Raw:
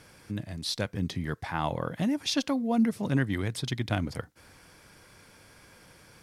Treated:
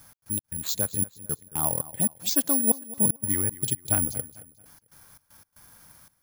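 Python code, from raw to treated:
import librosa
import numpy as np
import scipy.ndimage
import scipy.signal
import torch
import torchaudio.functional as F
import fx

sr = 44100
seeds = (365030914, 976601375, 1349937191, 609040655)

p1 = fx.low_shelf(x, sr, hz=250.0, db=9.5, at=(2.67, 3.16))
p2 = fx.env_phaser(p1, sr, low_hz=390.0, high_hz=4900.0, full_db=-23.5)
p3 = fx.step_gate(p2, sr, bpm=116, pattern='x.x.xxxx..x.x', floor_db=-60.0, edge_ms=4.5)
p4 = p3 + fx.echo_feedback(p3, sr, ms=222, feedback_pct=37, wet_db=-18.0, dry=0)
p5 = (np.kron(p4[::4], np.eye(4)[0]) * 4)[:len(p4)]
y = p5 * 10.0 ** (-1.0 / 20.0)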